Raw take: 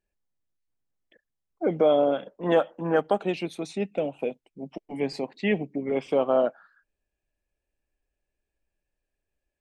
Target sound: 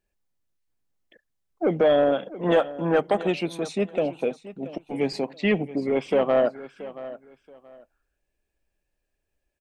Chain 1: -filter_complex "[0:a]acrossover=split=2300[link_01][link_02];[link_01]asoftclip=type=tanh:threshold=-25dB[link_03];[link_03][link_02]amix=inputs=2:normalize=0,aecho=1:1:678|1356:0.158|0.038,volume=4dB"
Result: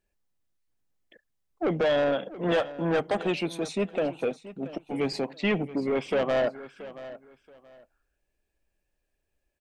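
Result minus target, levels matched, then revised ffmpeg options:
soft clipping: distortion +8 dB
-filter_complex "[0:a]acrossover=split=2300[link_01][link_02];[link_01]asoftclip=type=tanh:threshold=-16.5dB[link_03];[link_03][link_02]amix=inputs=2:normalize=0,aecho=1:1:678|1356:0.158|0.038,volume=4dB"

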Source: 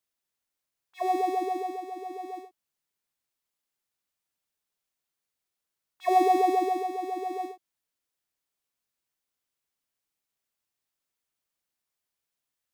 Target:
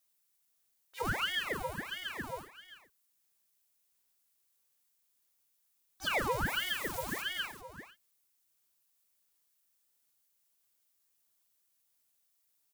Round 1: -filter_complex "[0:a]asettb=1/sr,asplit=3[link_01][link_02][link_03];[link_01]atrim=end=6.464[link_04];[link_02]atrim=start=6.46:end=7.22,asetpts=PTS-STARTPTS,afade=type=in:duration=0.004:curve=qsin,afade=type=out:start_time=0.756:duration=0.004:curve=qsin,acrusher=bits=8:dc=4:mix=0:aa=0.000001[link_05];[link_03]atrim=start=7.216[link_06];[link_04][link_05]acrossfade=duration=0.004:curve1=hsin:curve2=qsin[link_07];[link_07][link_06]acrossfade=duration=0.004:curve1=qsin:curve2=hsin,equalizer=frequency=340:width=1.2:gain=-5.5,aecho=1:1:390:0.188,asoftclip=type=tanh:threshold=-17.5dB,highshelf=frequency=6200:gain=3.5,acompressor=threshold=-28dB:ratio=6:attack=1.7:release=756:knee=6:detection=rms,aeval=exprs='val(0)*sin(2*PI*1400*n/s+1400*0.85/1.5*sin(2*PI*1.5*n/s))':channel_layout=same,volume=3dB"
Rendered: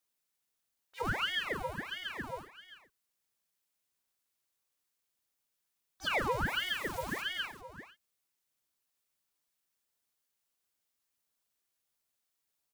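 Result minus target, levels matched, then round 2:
8,000 Hz band −5.0 dB
-filter_complex "[0:a]asettb=1/sr,asplit=3[link_01][link_02][link_03];[link_01]atrim=end=6.464[link_04];[link_02]atrim=start=6.46:end=7.22,asetpts=PTS-STARTPTS,afade=type=in:duration=0.004:curve=qsin,afade=type=out:start_time=0.756:duration=0.004:curve=qsin,acrusher=bits=8:dc=4:mix=0:aa=0.000001[link_05];[link_03]atrim=start=7.216[link_06];[link_04][link_05]acrossfade=duration=0.004:curve1=hsin:curve2=qsin[link_07];[link_07][link_06]acrossfade=duration=0.004:curve1=qsin:curve2=hsin,equalizer=frequency=340:width=1.2:gain=-5.5,aecho=1:1:390:0.188,asoftclip=type=tanh:threshold=-17.5dB,highshelf=frequency=6200:gain=13,acompressor=threshold=-28dB:ratio=6:attack=1.7:release=756:knee=6:detection=rms,aeval=exprs='val(0)*sin(2*PI*1400*n/s+1400*0.85/1.5*sin(2*PI*1.5*n/s))':channel_layout=same,volume=3dB"

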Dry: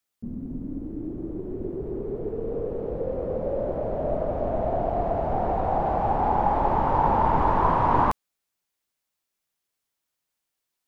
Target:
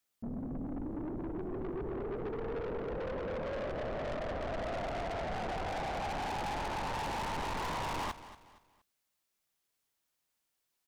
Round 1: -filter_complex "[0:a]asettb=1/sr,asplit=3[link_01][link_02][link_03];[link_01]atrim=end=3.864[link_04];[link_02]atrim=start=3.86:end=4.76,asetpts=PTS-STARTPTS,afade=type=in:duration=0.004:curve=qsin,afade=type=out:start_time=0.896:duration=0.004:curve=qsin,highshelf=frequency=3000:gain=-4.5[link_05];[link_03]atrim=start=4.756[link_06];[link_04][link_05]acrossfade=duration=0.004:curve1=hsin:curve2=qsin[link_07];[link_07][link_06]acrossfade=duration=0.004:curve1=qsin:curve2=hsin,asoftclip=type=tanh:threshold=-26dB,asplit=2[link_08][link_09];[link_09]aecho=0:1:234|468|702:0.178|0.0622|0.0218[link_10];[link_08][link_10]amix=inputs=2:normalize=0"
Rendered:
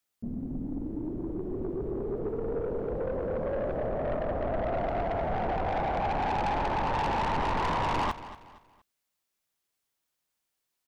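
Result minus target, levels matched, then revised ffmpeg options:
soft clipping: distortion −4 dB
-filter_complex "[0:a]asettb=1/sr,asplit=3[link_01][link_02][link_03];[link_01]atrim=end=3.864[link_04];[link_02]atrim=start=3.86:end=4.76,asetpts=PTS-STARTPTS,afade=type=in:duration=0.004:curve=qsin,afade=type=out:start_time=0.896:duration=0.004:curve=qsin,highshelf=frequency=3000:gain=-4.5[link_05];[link_03]atrim=start=4.756[link_06];[link_04][link_05]acrossfade=duration=0.004:curve1=hsin:curve2=qsin[link_07];[link_07][link_06]acrossfade=duration=0.004:curve1=qsin:curve2=hsin,asoftclip=type=tanh:threshold=-35.5dB,asplit=2[link_08][link_09];[link_09]aecho=0:1:234|468|702:0.178|0.0622|0.0218[link_10];[link_08][link_10]amix=inputs=2:normalize=0"

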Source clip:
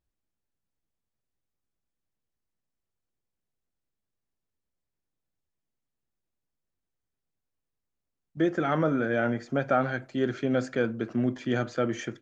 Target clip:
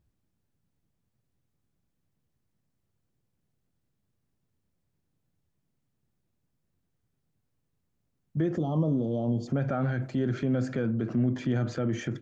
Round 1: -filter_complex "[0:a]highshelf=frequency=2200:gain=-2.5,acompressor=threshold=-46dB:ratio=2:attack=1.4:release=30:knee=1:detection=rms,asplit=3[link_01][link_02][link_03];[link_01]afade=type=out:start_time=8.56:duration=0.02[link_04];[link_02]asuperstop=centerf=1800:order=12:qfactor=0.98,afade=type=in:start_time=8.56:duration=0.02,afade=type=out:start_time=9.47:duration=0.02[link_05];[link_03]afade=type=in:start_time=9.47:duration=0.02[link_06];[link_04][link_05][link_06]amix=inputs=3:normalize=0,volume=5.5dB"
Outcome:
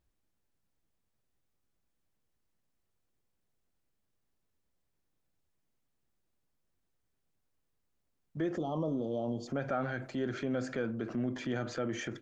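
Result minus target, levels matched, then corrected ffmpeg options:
125 Hz band −5.5 dB
-filter_complex "[0:a]highshelf=frequency=2200:gain=-2.5,acompressor=threshold=-46dB:ratio=2:attack=1.4:release=30:knee=1:detection=rms,equalizer=frequency=130:width_type=o:width=2.2:gain=12.5,asplit=3[link_01][link_02][link_03];[link_01]afade=type=out:start_time=8.56:duration=0.02[link_04];[link_02]asuperstop=centerf=1800:order=12:qfactor=0.98,afade=type=in:start_time=8.56:duration=0.02,afade=type=out:start_time=9.47:duration=0.02[link_05];[link_03]afade=type=in:start_time=9.47:duration=0.02[link_06];[link_04][link_05][link_06]amix=inputs=3:normalize=0,volume=5.5dB"

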